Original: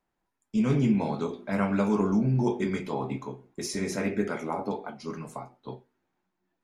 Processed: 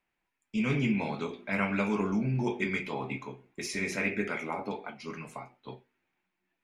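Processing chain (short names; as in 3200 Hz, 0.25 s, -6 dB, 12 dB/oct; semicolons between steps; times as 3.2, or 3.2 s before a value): bell 2400 Hz +14.5 dB 1 oct; gain -5 dB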